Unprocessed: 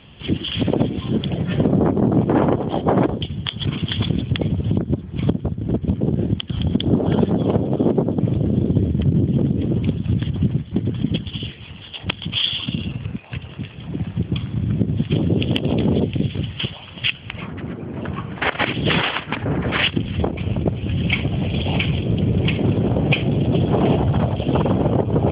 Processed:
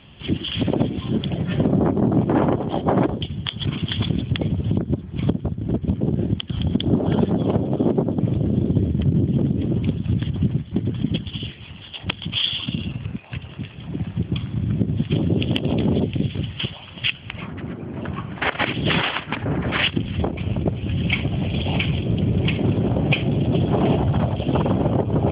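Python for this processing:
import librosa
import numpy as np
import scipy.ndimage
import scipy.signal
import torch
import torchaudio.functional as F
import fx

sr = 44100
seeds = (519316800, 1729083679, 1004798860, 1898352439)

y = fx.notch(x, sr, hz=470.0, q=12.0)
y = F.gain(torch.from_numpy(y), -1.5).numpy()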